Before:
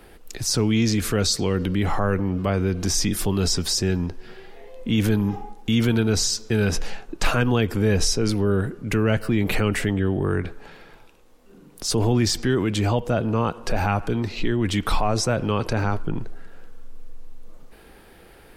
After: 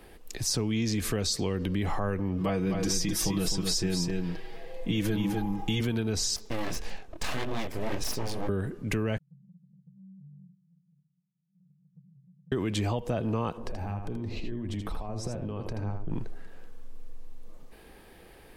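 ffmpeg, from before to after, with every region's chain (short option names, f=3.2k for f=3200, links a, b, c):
-filter_complex "[0:a]asettb=1/sr,asplit=3[a][b][c];[a]atrim=end=2.404[d];[b]atrim=start=2.4:end=5.81,asetpts=PTS-STARTPTS,afade=t=in:d=0.004:c=qsin,afade=t=out:st=3.406:d=0.004:c=qsin,aecho=1:1:6.2:0.81,atrim=end_sample=150381,aecho=1:1:256:0.531,atrim=end_sample=150381[e];[c]atrim=start=5.806[f];[d][e]acrossfade=d=0.004:c1=hsin:c2=qsin[g];[g][f]acrossfade=d=0.004:c1=qsin:c2=hsin,asettb=1/sr,asplit=3[h][i][j];[h]atrim=end=6.364[k];[i]atrim=start=6.36:end=8.49,asetpts=PTS-STARTPTS,afade=t=in:d=0.004:c=qsin,afade=t=out:st=2.126:d=0.004:c=qsin,flanger=delay=18.5:depth=7.7:speed=1.8,aeval=exprs='abs(val(0))':c=same[l];[j]atrim=start=8.486[m];[k][l]acrossfade=d=0.004:c1=hsin:c2=qsin[n];[n][m]acrossfade=d=0.004:c1=qsin:c2=hsin,asettb=1/sr,asplit=3[o][p][q];[o]atrim=end=9.184[r];[p]atrim=start=9.18:end=12.52,asetpts=PTS-STARTPTS,afade=t=in:d=0.004:c=qsin,afade=t=out:st=3.336:d=0.004:c=qsin,asuperpass=centerf=160:order=20:qfactor=2.8,acompressor=threshold=-59dB:ratio=2:attack=3.2:release=140:knee=1:detection=peak[s];[q]atrim=start=12.516[t];[r][s]acrossfade=d=0.004:c1=hsin:c2=qsin[u];[u][t]acrossfade=d=0.004:c1=qsin:c2=hsin,asettb=1/sr,asplit=3[v][w][x];[v]atrim=end=13.574[y];[w]atrim=start=13.57:end=16.11,asetpts=PTS-STARTPTS,afade=t=in:d=0.004:c=qsin,afade=t=out:st=2.536:d=0.004:c=qsin,tiltshelf=f=800:g=6.5,acompressor=threshold=-26dB:ratio=16:attack=3.2:release=140:knee=1:detection=peak,aecho=1:1:80:0.473,atrim=end_sample=112014[z];[x]atrim=start=16.106[aa];[y][z]acrossfade=d=0.004:c1=hsin:c2=qsin[ab];[ab][aa]acrossfade=d=0.004:c1=qsin:c2=hsin,bandreject=f=1.4k:w=8.9,acompressor=threshold=-21dB:ratio=6,volume=-3.5dB"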